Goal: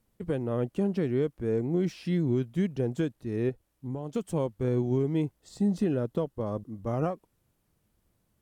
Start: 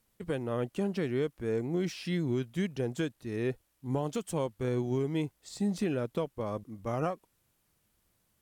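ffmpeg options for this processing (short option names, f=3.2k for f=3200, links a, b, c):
-filter_complex "[0:a]tiltshelf=f=880:g=5,asettb=1/sr,asplit=3[a][b][c];[a]atrim=end=3.494[d];[b]atrim=start=3.49:end=4.16,asetpts=PTS-STARTPTS,afade=t=in:d=0.004:c=qsin,afade=t=out:st=0.666:d=0.004:c=qsin,acompressor=threshold=-34dB:ratio=3[e];[c]atrim=start=4.156[f];[d][e]acrossfade=d=0.004:c1=hsin:c2=qsin[g];[g][f]acrossfade=d=0.004:c1=qsin:c2=hsin,asettb=1/sr,asplit=3[h][i][j];[h]atrim=end=5.404[k];[i]atrim=start=5.4:end=6.92,asetpts=PTS-STARTPTS,afade=t=in:d=0.004:c=qsin,afade=t=out:st=1.516:d=0.004:c=qsin,bandreject=f=2.3k:w=7.2[l];[j]atrim=start=6.916[m];[k][l]acrossfade=d=0.004:c1=hsin:c2=qsin[n];[n][m]acrossfade=d=0.004:c1=qsin:c2=hsin"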